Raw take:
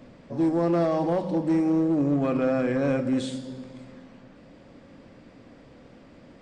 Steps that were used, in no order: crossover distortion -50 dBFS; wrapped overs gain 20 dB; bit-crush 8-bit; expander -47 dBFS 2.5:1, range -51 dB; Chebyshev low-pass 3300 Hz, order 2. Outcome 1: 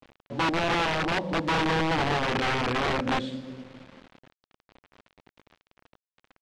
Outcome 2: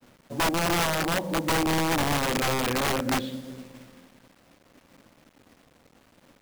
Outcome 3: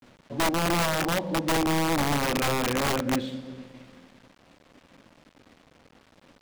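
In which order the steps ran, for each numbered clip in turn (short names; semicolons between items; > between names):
expander > crossover distortion > wrapped overs > bit-crush > Chebyshev low-pass; Chebyshev low-pass > wrapped overs > bit-crush > crossover distortion > expander; expander > bit-crush > Chebyshev low-pass > crossover distortion > wrapped overs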